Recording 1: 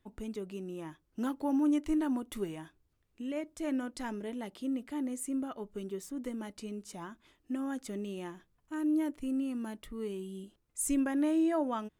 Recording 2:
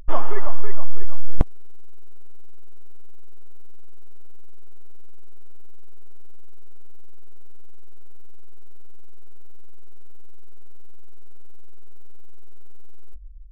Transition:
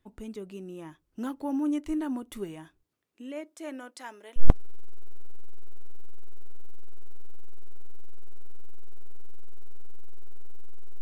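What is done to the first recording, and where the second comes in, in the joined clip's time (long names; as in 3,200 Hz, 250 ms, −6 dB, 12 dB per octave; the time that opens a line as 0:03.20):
recording 1
0:02.83–0:04.44: high-pass filter 170 Hz → 820 Hz
0:04.40: continue with recording 2 from 0:01.31, crossfade 0.08 s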